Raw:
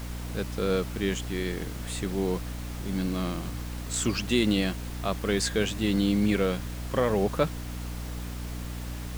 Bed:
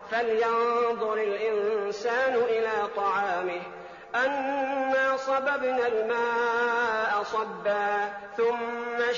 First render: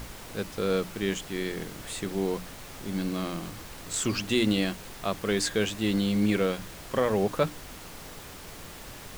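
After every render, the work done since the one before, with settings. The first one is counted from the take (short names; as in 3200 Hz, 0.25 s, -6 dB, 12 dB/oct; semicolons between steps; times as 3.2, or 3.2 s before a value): notches 60/120/180/240/300 Hz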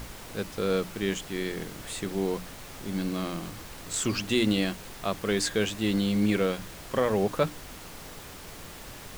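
nothing audible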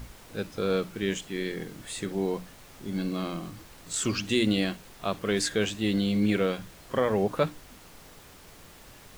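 noise print and reduce 7 dB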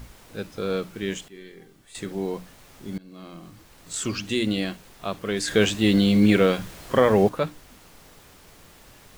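1.28–1.95 resonator 390 Hz, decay 0.33 s, mix 80%; 2.98–3.95 fade in, from -23 dB; 5.48–7.29 gain +7.5 dB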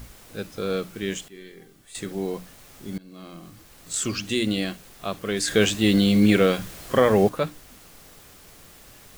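high shelf 6300 Hz +6 dB; notch 930 Hz, Q 14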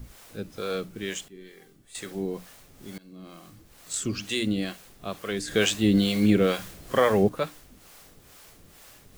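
harmonic tremolo 2.2 Hz, depth 70%, crossover 470 Hz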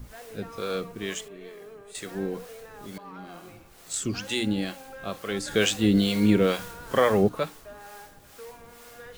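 add bed -19 dB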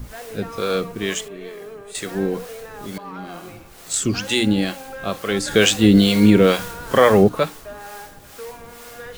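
gain +8.5 dB; limiter -2 dBFS, peak gain reduction 2 dB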